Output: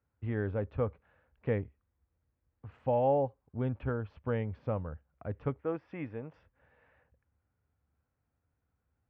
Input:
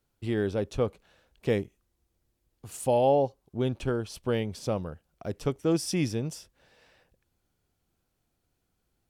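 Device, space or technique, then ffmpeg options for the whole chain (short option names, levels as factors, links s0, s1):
bass cabinet: -filter_complex "[0:a]asettb=1/sr,asplit=3[s0][s1][s2];[s0]atrim=end=5.594[s3];[s1]atrim=start=5.59:end=6.34,asetpts=PTS-STARTPTS,afade=t=in:d=0.004:c=qsin,afade=t=out:st=0.746:d=0.004:c=qsin,bass=f=250:g=-12,treble=f=4000:g=-14[s4];[s2]atrim=start=6.336[s5];[s3][s4]acrossfade=d=0.004:c1=hsin:c2=qsin[s6];[s6][s5]acrossfade=d=0.004:c1=qsin:c2=hsin,highpass=60,equalizer=f=70:t=q:w=4:g=10,equalizer=f=100:t=q:w=4:g=3,equalizer=f=190:t=q:w=4:g=-5,equalizer=f=360:t=q:w=4:g=-10,equalizer=f=680:t=q:w=4:g=-4,lowpass=f=2000:w=0.5412,lowpass=f=2000:w=1.3066,volume=0.75"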